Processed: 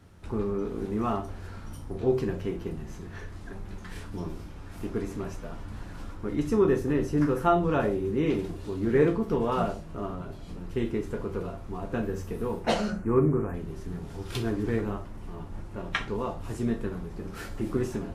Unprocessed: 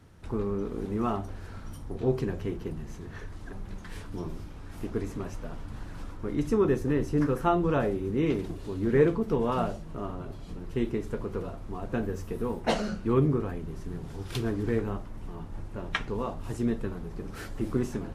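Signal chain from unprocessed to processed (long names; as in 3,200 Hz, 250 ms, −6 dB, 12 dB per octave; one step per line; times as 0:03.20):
0:12.90–0:13.54: Butterworth band-reject 3,900 Hz, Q 0.8
convolution reverb RT60 0.30 s, pre-delay 5 ms, DRR 4 dB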